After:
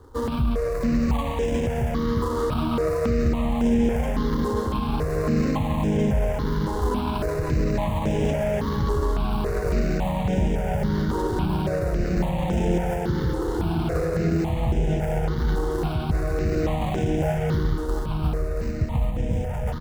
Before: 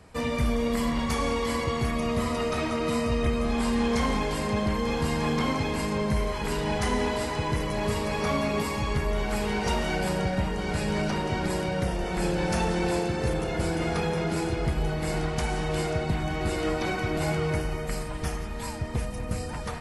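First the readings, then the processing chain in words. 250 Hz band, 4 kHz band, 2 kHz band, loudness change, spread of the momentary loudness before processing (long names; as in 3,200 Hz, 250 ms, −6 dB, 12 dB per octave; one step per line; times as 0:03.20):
+4.0 dB, −5.0 dB, −4.0 dB, +3.0 dB, 4 LU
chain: running median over 25 samples
brickwall limiter −22 dBFS, peak gain reduction 5.5 dB
single-tap delay 679 ms −7.5 dB
step-sequenced phaser 3.6 Hz 660–4,300 Hz
level +8 dB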